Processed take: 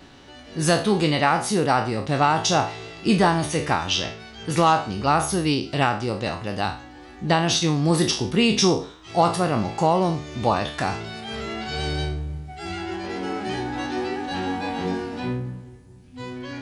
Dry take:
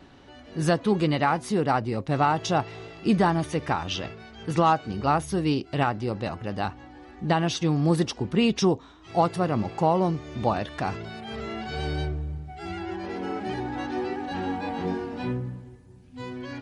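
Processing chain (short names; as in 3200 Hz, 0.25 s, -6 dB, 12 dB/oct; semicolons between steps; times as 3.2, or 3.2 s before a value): spectral trails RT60 0.41 s; high shelf 2800 Hz +8.5 dB, from 15.2 s +3 dB; gain +1.5 dB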